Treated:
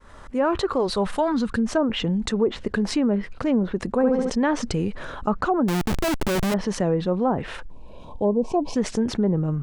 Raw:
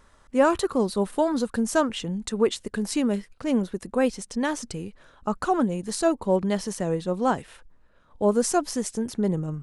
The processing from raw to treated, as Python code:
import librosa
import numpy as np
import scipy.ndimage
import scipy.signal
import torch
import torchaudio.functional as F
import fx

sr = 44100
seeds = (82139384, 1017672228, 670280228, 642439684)

y = fx.fade_in_head(x, sr, length_s=1.04)
y = fx.peak_eq(y, sr, hz=fx.line((0.65, 150.0), (1.65, 840.0)), db=-13.5, octaves=1.0, at=(0.65, 1.65), fade=0.02)
y = fx.spec_box(y, sr, start_s=7.7, length_s=1.06, low_hz=1100.0, high_hz=2200.0, gain_db=-24)
y = fx.env_lowpass_down(y, sr, base_hz=790.0, full_db=-17.0)
y = fx.rider(y, sr, range_db=4, speed_s=0.5)
y = fx.high_shelf(y, sr, hz=3800.0, db=-9.5)
y = fx.room_flutter(y, sr, wall_m=11.9, rt60_s=0.94, at=(3.89, 4.3))
y = fx.schmitt(y, sr, flips_db=-34.0, at=(5.68, 6.54))
y = fx.env_flatten(y, sr, amount_pct=50)